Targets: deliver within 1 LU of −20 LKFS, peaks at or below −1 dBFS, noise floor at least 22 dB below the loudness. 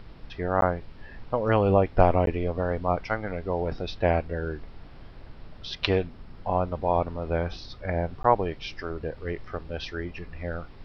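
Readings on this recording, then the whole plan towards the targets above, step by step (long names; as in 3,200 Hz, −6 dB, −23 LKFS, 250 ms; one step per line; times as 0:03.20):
number of dropouts 3; longest dropout 12 ms; background noise floor −46 dBFS; target noise floor −50 dBFS; integrated loudness −27.5 LKFS; sample peak −4.0 dBFS; target loudness −20.0 LKFS
→ repair the gap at 0:00.61/0:02.26/0:08.23, 12 ms
noise reduction from a noise print 6 dB
level +7.5 dB
brickwall limiter −1 dBFS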